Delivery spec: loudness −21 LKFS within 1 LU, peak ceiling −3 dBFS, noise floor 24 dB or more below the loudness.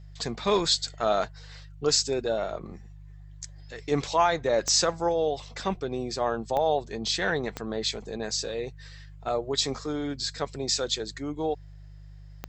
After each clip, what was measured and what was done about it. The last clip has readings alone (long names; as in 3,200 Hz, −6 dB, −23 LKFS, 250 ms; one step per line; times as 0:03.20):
number of clicks 4; mains hum 50 Hz; hum harmonics up to 150 Hz; level of the hum −43 dBFS; integrated loudness −27.5 LKFS; sample peak −10.5 dBFS; target loudness −21.0 LKFS
→ click removal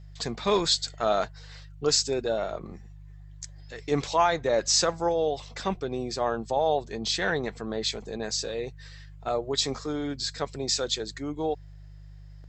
number of clicks 0; mains hum 50 Hz; hum harmonics up to 150 Hz; level of the hum −43 dBFS
→ hum removal 50 Hz, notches 3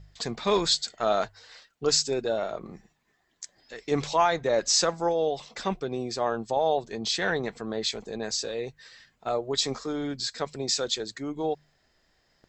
mains hum none found; integrated loudness −27.5 LKFS; sample peak −10.5 dBFS; target loudness −21.0 LKFS
→ level +6.5 dB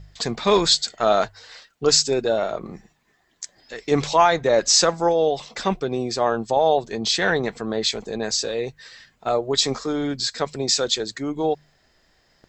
integrated loudness −21.0 LKFS; sample peak −4.0 dBFS; background noise floor −63 dBFS